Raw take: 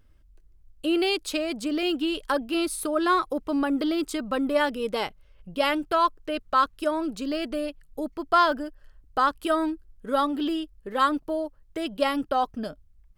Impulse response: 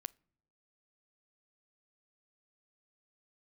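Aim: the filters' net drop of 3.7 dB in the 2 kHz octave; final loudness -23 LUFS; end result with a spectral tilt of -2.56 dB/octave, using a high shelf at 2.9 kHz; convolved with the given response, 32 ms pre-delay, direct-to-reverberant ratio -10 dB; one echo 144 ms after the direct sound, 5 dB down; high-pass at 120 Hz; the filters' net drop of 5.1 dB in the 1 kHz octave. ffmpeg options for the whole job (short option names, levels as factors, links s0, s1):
-filter_complex "[0:a]highpass=120,equalizer=f=1000:t=o:g=-5.5,equalizer=f=2000:t=o:g=-5,highshelf=f=2900:g=4.5,aecho=1:1:144:0.562,asplit=2[s0][s1];[1:a]atrim=start_sample=2205,adelay=32[s2];[s1][s2]afir=irnorm=-1:irlink=0,volume=5.01[s3];[s0][s3]amix=inputs=2:normalize=0,volume=0.473"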